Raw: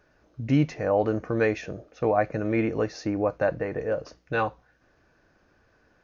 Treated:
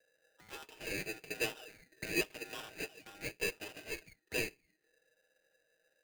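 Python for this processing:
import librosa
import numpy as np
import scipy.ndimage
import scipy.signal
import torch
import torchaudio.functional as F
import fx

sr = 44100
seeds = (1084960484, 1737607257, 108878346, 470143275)

y = fx.lower_of_two(x, sr, delay_ms=6.4)
y = fx.low_shelf(y, sr, hz=180.0, db=-5.0)
y = fx.auto_wah(y, sr, base_hz=560.0, top_hz=1500.0, q=12.0, full_db=-29.0, direction='up')
y = y * np.sign(np.sin(2.0 * np.pi * 1100.0 * np.arange(len(y)) / sr))
y = F.gain(torch.from_numpy(y), 5.0).numpy()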